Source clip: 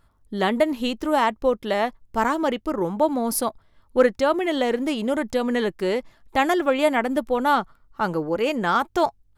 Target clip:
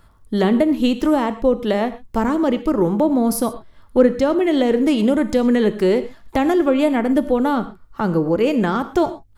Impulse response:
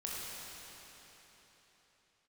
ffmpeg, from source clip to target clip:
-filter_complex "[0:a]acrossover=split=440[link_01][link_02];[link_02]acompressor=threshold=-36dB:ratio=3[link_03];[link_01][link_03]amix=inputs=2:normalize=0,asplit=2[link_04][link_05];[1:a]atrim=start_sample=2205,atrim=end_sample=6174[link_06];[link_05][link_06]afir=irnorm=-1:irlink=0,volume=-6dB[link_07];[link_04][link_07]amix=inputs=2:normalize=0,volume=7dB"

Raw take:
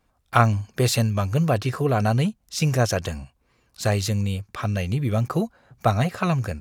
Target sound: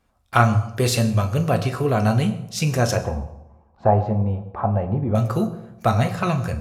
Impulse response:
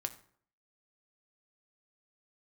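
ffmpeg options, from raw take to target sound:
-filter_complex "[0:a]asettb=1/sr,asplit=3[link_01][link_02][link_03];[link_01]atrim=end=2.974[link_04];[link_02]atrim=start=2.97:end=5.15,asetpts=PTS-STARTPTS,afade=type=in:duration=0.004:curve=qsin,afade=type=out:start_time=2.176:duration=0.004:curve=qsin,lowpass=frequency=840:width_type=q:width=4.9[link_05];[link_03]atrim=start=5.146[link_06];[link_04][link_05]acrossfade=duration=0.004:curve1=hsin:curve2=qsin[link_07];[link_07][link_06]acrossfade=duration=0.004:curve1=qsin:curve2=hsin[link_08];[1:a]atrim=start_sample=2205,asetrate=26901,aresample=44100[link_09];[link_08][link_09]afir=irnorm=-1:irlink=0,volume=-1dB"

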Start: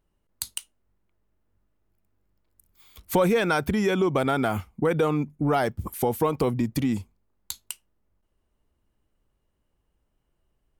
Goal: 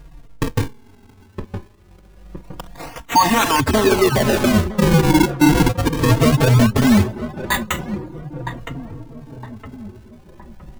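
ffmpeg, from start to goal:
ffmpeg -i in.wav -filter_complex "[0:a]afftfilt=real='re*pow(10,19/40*sin(2*PI*(0.55*log(max(b,1)*sr/1024/100)/log(2)-(0.47)*(pts-256)/sr)))':imag='im*pow(10,19/40*sin(2*PI*(0.55*log(max(b,1)*sr/1024/100)/log(2)-(0.47)*(pts-256)/sr)))':win_size=1024:overlap=0.75,bass=frequency=250:gain=-7,treble=frequency=4000:gain=-5,asplit=2[link_01][link_02];[link_02]aeval=exprs='(mod(15.8*val(0)+1,2)-1)/15.8':channel_layout=same,volume=-6dB[link_03];[link_01][link_03]amix=inputs=2:normalize=0,aecho=1:1:1.1:0.82,acrusher=samples=41:mix=1:aa=0.000001:lfo=1:lforange=65.6:lforate=0.23,areverse,acompressor=threshold=-33dB:ratio=10,areverse,asplit=2[link_04][link_05];[link_05]adelay=964,lowpass=frequency=1200:poles=1,volume=-13.5dB,asplit=2[link_06][link_07];[link_07]adelay=964,lowpass=frequency=1200:poles=1,volume=0.53,asplit=2[link_08][link_09];[link_09]adelay=964,lowpass=frequency=1200:poles=1,volume=0.53,asplit=2[link_10][link_11];[link_11]adelay=964,lowpass=frequency=1200:poles=1,volume=0.53,asplit=2[link_12][link_13];[link_13]adelay=964,lowpass=frequency=1200:poles=1,volume=0.53[link_14];[link_04][link_06][link_08][link_10][link_12][link_14]amix=inputs=6:normalize=0,adynamicequalizer=threshold=0.00126:dfrequency=500:dqfactor=5.6:tfrequency=500:tqfactor=5.6:attack=5:release=100:ratio=0.375:range=1.5:mode=boostabove:tftype=bell,alimiter=level_in=29.5dB:limit=-1dB:release=50:level=0:latency=1,asplit=2[link_15][link_16];[link_16]adelay=3.8,afreqshift=-0.35[link_17];[link_15][link_17]amix=inputs=2:normalize=1,volume=-3dB" out.wav

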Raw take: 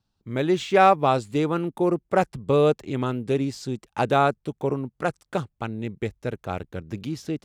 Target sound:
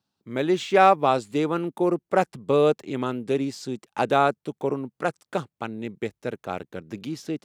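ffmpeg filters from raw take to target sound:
ffmpeg -i in.wav -af "highpass=180" out.wav

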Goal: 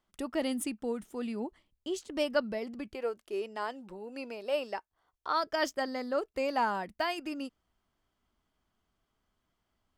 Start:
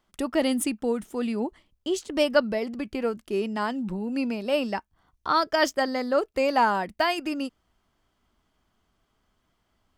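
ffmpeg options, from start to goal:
ffmpeg -i in.wav -filter_complex "[0:a]asettb=1/sr,asplit=3[link_01][link_02][link_03];[link_01]atrim=end=2.944[link_04];[link_02]atrim=start=2.94:end=5.44,asetpts=PTS-STARTPTS,afade=type=in:duration=0.004:curve=qsin,afade=type=out:start_time=2.496:duration=0.004:curve=qsin,lowshelf=frequency=310:width_type=q:width=1.5:gain=-10[link_05];[link_03]atrim=start=5.436[link_06];[link_04][link_05]acrossfade=duration=0.004:curve1=hsin:curve2=qsin[link_07];[link_07][link_06]acrossfade=duration=0.004:curve1=qsin:curve2=hsin,volume=-8dB" out.wav

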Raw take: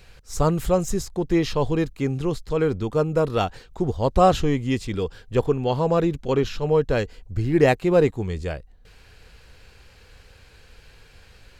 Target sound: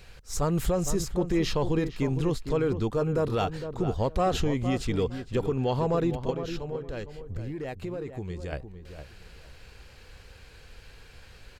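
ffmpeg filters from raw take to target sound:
ffmpeg -i in.wav -filter_complex "[0:a]acontrast=67,alimiter=limit=-11dB:level=0:latency=1:release=86,asettb=1/sr,asplit=3[link_01][link_02][link_03];[link_01]atrim=end=6.304[link_04];[link_02]atrim=start=6.3:end=8.53,asetpts=PTS-STARTPTS,afade=type=in:duration=0.004:curve=qsin,afade=type=out:start_time=2.226:duration=0.004:curve=qsin,acompressor=threshold=-26dB:ratio=6[link_05];[link_03]atrim=start=8.526[link_06];[link_04][link_05]acrossfade=duration=0.004:curve1=hsin:curve2=qsin[link_07];[link_07][link_06]acrossfade=duration=0.004:curve1=qsin:curve2=hsin,asplit=2[link_08][link_09];[link_09]adelay=459,lowpass=frequency=1600:poles=1,volume=-9dB,asplit=2[link_10][link_11];[link_11]adelay=459,lowpass=frequency=1600:poles=1,volume=0.21,asplit=2[link_12][link_13];[link_13]adelay=459,lowpass=frequency=1600:poles=1,volume=0.21[link_14];[link_08][link_10][link_12][link_14]amix=inputs=4:normalize=0,volume=-7dB" out.wav

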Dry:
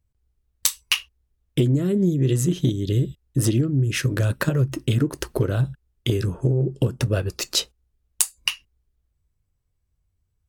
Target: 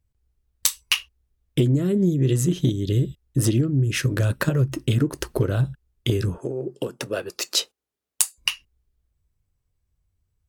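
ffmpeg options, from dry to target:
ffmpeg -i in.wav -filter_complex "[0:a]asettb=1/sr,asplit=3[link_01][link_02][link_03];[link_01]atrim=end=6.384[link_04];[link_02]atrim=start=6.38:end=8.38,asetpts=PTS-STARTPTS,afade=type=in:duration=0.004:curve=qsin,afade=type=out:start_time=1.996:duration=0.004:curve=qsin,highpass=330[link_05];[link_03]atrim=start=8.376[link_06];[link_04][link_05]acrossfade=duration=0.004:curve1=hsin:curve2=qsin[link_07];[link_07][link_06]acrossfade=duration=0.004:curve1=qsin:curve2=hsin" out.wav

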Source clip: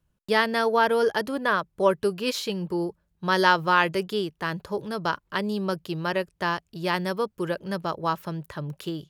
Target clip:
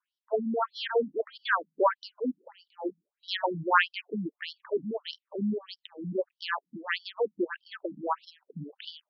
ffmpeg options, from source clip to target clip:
ffmpeg -i in.wav -af "afftfilt=real='re*between(b*sr/1024,210*pow(4200/210,0.5+0.5*sin(2*PI*1.6*pts/sr))/1.41,210*pow(4200/210,0.5+0.5*sin(2*PI*1.6*pts/sr))*1.41)':imag='im*between(b*sr/1024,210*pow(4200/210,0.5+0.5*sin(2*PI*1.6*pts/sr))/1.41,210*pow(4200/210,0.5+0.5*sin(2*PI*1.6*pts/sr))*1.41)':win_size=1024:overlap=0.75,volume=1.5dB" out.wav

